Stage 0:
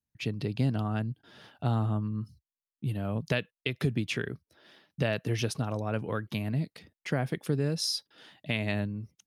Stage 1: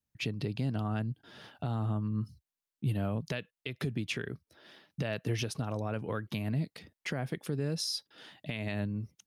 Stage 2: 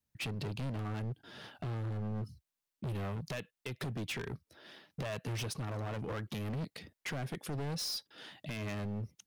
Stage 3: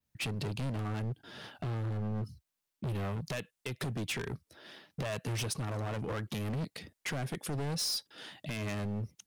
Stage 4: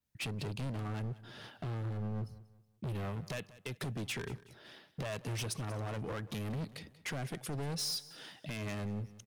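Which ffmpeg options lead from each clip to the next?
ffmpeg -i in.wav -af "alimiter=level_in=0.5dB:limit=-24dB:level=0:latency=1:release=269,volume=-0.5dB,volume=1.5dB" out.wav
ffmpeg -i in.wav -af "asoftclip=type=hard:threshold=-36.5dB,volume=1.5dB" out.wav
ffmpeg -i in.wav -af "adynamicequalizer=threshold=0.001:dfrequency=8800:dqfactor=1.1:tfrequency=8800:tqfactor=1.1:attack=5:release=100:ratio=0.375:range=2.5:mode=boostabove:tftype=bell,volume=2.5dB" out.wav
ffmpeg -i in.wav -af "aecho=1:1:186|372|558:0.119|0.044|0.0163,volume=-3dB" out.wav

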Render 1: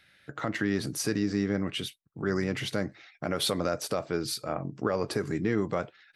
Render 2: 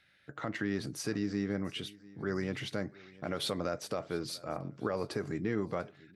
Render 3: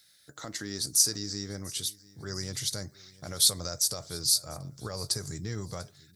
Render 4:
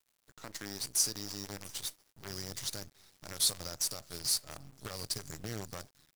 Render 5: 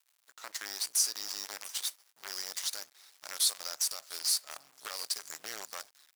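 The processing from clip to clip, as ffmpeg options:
ffmpeg -i in.wav -af "highshelf=frequency=9800:gain=-9.5,aecho=1:1:694|1388:0.0841|0.0261,volume=-5.5dB" out.wav
ffmpeg -i in.wav -af "asubboost=boost=11:cutoff=84,aexciter=amount=12.6:drive=6.8:freq=4100,volume=-4dB" out.wav
ffmpeg -i in.wav -af "acrusher=bits=6:dc=4:mix=0:aa=0.000001,volume=-6.5dB" out.wav
ffmpeg -i in.wav -filter_complex "[0:a]highpass=850,asplit=2[link_01][link_02];[link_02]alimiter=level_in=2dB:limit=-24dB:level=0:latency=1:release=235,volume=-2dB,volume=0.5dB[link_03];[link_01][link_03]amix=inputs=2:normalize=0,volume=-1.5dB" out.wav

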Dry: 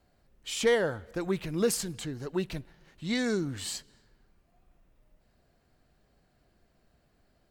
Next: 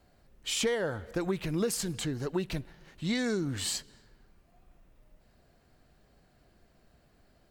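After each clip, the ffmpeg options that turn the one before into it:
ffmpeg -i in.wav -af "acompressor=threshold=-31dB:ratio=5,volume=4dB" out.wav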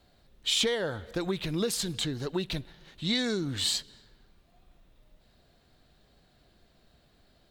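ffmpeg -i in.wav -af "equalizer=frequency=3700:width_type=o:width=0.55:gain=11" out.wav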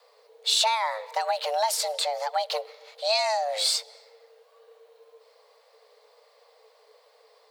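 ffmpeg -i in.wav -af "afreqshift=430,volume=4dB" out.wav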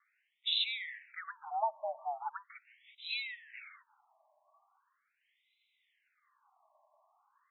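ffmpeg -i in.wav -af "afftfilt=real='re*between(b*sr/1024,810*pow(2900/810,0.5+0.5*sin(2*PI*0.4*pts/sr))/1.41,810*pow(2900/810,0.5+0.5*sin(2*PI*0.4*pts/sr))*1.41)':imag='im*between(b*sr/1024,810*pow(2900/810,0.5+0.5*sin(2*PI*0.4*pts/sr))/1.41,810*pow(2900/810,0.5+0.5*sin(2*PI*0.4*pts/sr))*1.41)':win_size=1024:overlap=0.75,volume=-6dB" out.wav

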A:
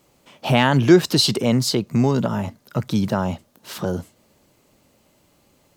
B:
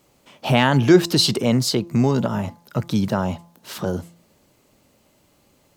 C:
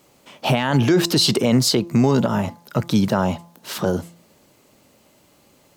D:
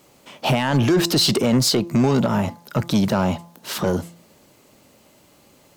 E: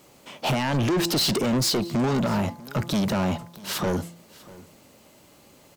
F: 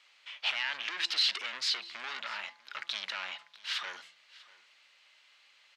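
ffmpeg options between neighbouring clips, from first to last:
ffmpeg -i in.wav -af "bandreject=frequency=170.6:width_type=h:width=4,bandreject=frequency=341.2:width_type=h:width=4,bandreject=frequency=511.8:width_type=h:width=4,bandreject=frequency=682.4:width_type=h:width=4,bandreject=frequency=853:width_type=h:width=4,bandreject=frequency=1023.6:width_type=h:width=4,bandreject=frequency=1194.2:width_type=h:width=4" out.wav
ffmpeg -i in.wav -af "lowshelf=frequency=85:gain=-9,alimiter=limit=-12.5dB:level=0:latency=1:release=34,volume=4.5dB" out.wav
ffmpeg -i in.wav -af "aeval=exprs='0.422*(cos(1*acos(clip(val(0)/0.422,-1,1)))-cos(1*PI/2))+0.0422*(cos(5*acos(clip(val(0)/0.422,-1,1)))-cos(5*PI/2))':channel_layout=same,volume=-1.5dB" out.wav
ffmpeg -i in.wav -af "asoftclip=type=tanh:threshold=-20dB,aecho=1:1:644:0.0891" out.wav
ffmpeg -i in.wav -af "asuperpass=centerf=2600:order=4:qfactor=1" out.wav

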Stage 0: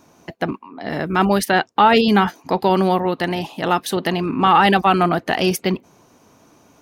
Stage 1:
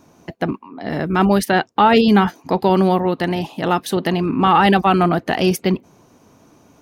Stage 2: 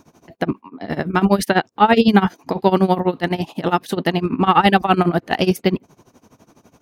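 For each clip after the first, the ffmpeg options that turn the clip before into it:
ffmpeg -i in.wav -af "lowshelf=frequency=460:gain=5.5,volume=-1.5dB" out.wav
ffmpeg -i in.wav -af "tremolo=f=12:d=0.89,volume=3dB" out.wav

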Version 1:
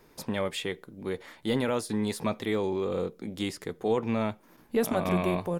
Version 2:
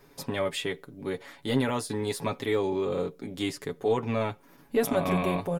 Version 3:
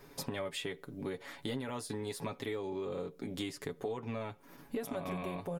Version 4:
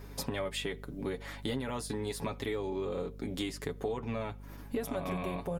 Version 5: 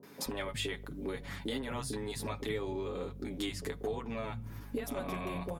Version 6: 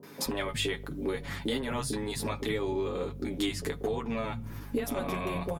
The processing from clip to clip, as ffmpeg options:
ffmpeg -i in.wav -af "aecho=1:1:7.2:0.64" out.wav
ffmpeg -i in.wav -af "acompressor=threshold=-37dB:ratio=6,volume=1dB" out.wav
ffmpeg -i in.wav -af "aeval=exprs='val(0)+0.00355*(sin(2*PI*50*n/s)+sin(2*PI*2*50*n/s)/2+sin(2*PI*3*50*n/s)/3+sin(2*PI*4*50*n/s)/4+sin(2*PI*5*50*n/s)/5)':channel_layout=same,volume=3dB" out.wav
ffmpeg -i in.wav -filter_complex "[0:a]acrossover=split=170|610[link_01][link_02][link_03];[link_03]adelay=30[link_04];[link_01]adelay=260[link_05];[link_05][link_02][link_04]amix=inputs=3:normalize=0" out.wav
ffmpeg -i in.wav -filter_complex "[0:a]asplit=2[link_01][link_02];[link_02]adelay=13,volume=-11dB[link_03];[link_01][link_03]amix=inputs=2:normalize=0,volume=5dB" out.wav

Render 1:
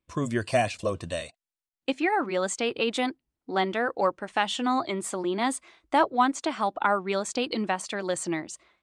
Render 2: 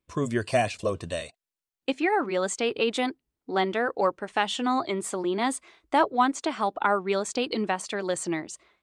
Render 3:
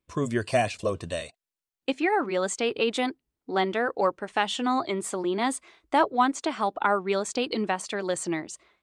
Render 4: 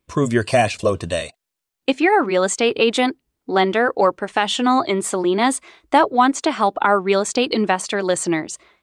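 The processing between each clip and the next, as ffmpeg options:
ffmpeg -i in.wav -af "equalizer=frequency=420:width=7.1:gain=5.5" out.wav
ffmpeg -i in.wav -af anull out.wav
ffmpeg -i in.wav -af "alimiter=level_in=12dB:limit=-1dB:release=50:level=0:latency=1,volume=-3dB" out.wav

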